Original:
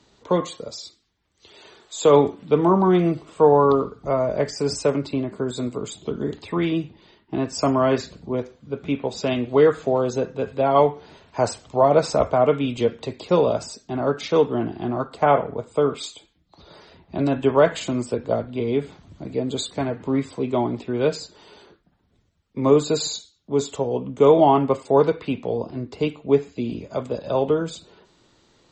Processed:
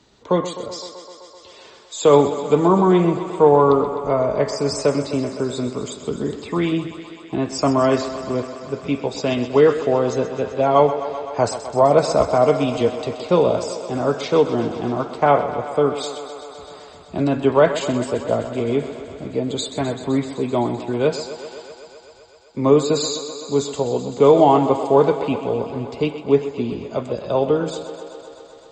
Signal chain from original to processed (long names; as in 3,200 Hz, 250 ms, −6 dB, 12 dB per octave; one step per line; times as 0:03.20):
feedback echo with a high-pass in the loop 128 ms, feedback 82%, high-pass 190 Hz, level −12 dB
level +2 dB